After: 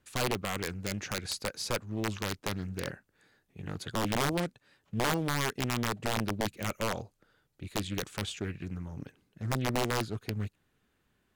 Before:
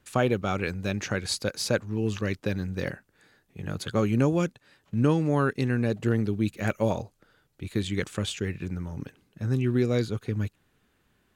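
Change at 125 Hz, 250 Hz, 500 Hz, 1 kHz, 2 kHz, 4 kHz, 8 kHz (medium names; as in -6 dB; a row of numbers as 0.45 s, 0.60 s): -8.0 dB, -8.5 dB, -7.5 dB, -0.5 dB, -2.0 dB, 0.0 dB, +0.5 dB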